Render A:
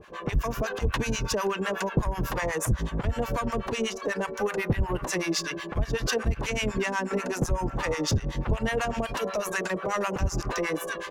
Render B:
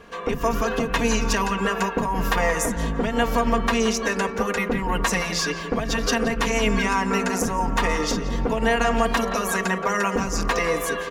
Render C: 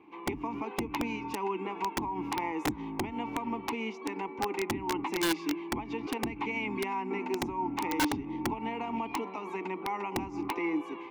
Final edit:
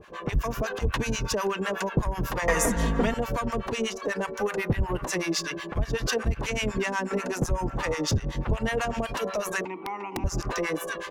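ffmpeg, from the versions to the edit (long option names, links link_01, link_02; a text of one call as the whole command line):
ffmpeg -i take0.wav -i take1.wav -i take2.wav -filter_complex "[0:a]asplit=3[link_01][link_02][link_03];[link_01]atrim=end=2.482[link_04];[1:a]atrim=start=2.478:end=3.142[link_05];[link_02]atrim=start=3.138:end=9.652[link_06];[2:a]atrim=start=9.648:end=10.242[link_07];[link_03]atrim=start=10.238[link_08];[link_04][link_05]acrossfade=duration=0.004:curve1=hsin:curve2=hsin[link_09];[link_09][link_06]acrossfade=duration=0.004:curve1=hsin:curve2=hsin[link_10];[link_10][link_07]acrossfade=duration=0.004:curve1=hsin:curve2=hsin[link_11];[link_11][link_08]acrossfade=duration=0.004:curve1=hsin:curve2=hsin" out.wav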